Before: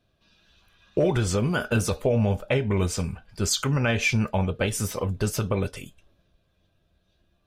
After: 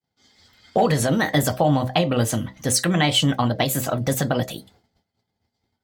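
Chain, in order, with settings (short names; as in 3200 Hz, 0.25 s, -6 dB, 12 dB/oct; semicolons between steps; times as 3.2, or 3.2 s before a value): notches 50/100/150/200/250/300/350/400/450/500 Hz; expander -57 dBFS; HPF 68 Hz; in parallel at -2 dB: compressor, threshold -36 dBFS, peak gain reduction 16.5 dB; on the sum: varispeed +28%; gain +3.5 dB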